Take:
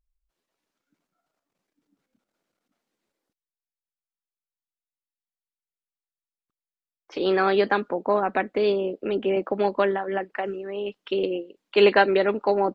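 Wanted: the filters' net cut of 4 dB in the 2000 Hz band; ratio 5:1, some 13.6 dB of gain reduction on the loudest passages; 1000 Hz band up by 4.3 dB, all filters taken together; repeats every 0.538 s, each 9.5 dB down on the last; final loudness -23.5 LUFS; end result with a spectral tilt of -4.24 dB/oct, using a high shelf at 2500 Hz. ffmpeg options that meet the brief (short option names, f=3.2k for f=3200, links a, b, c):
-af "equalizer=f=1k:t=o:g=8,equalizer=f=2k:t=o:g=-6.5,highshelf=f=2.5k:g=-5.5,acompressor=threshold=-27dB:ratio=5,aecho=1:1:538|1076|1614|2152:0.335|0.111|0.0365|0.012,volume=7.5dB"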